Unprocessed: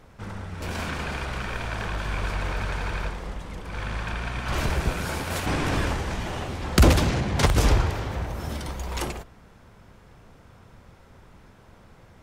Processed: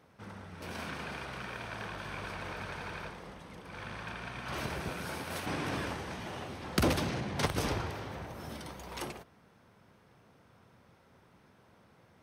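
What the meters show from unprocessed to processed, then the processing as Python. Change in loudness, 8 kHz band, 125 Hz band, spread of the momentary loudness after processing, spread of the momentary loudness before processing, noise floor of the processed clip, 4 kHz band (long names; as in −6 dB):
−10.5 dB, −10.0 dB, −13.5 dB, 13 LU, 13 LU, −63 dBFS, −8.5 dB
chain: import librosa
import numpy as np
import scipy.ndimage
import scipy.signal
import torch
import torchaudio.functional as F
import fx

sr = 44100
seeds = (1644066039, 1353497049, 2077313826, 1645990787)

y = scipy.signal.sosfilt(scipy.signal.butter(2, 120.0, 'highpass', fs=sr, output='sos'), x)
y = fx.notch(y, sr, hz=7200.0, q=5.8)
y = F.gain(torch.from_numpy(y), -8.5).numpy()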